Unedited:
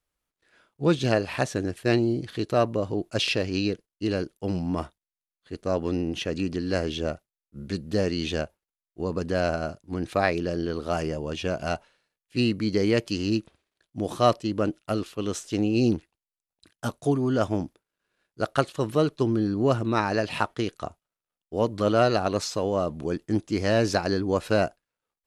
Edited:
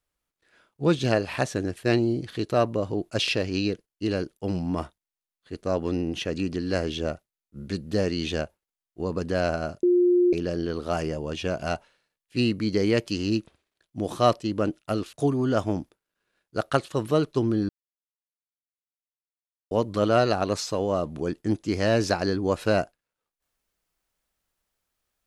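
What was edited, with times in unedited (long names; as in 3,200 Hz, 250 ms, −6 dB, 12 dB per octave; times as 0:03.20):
0:09.83–0:10.33: beep over 355 Hz −16 dBFS
0:15.13–0:16.97: remove
0:19.53–0:21.55: silence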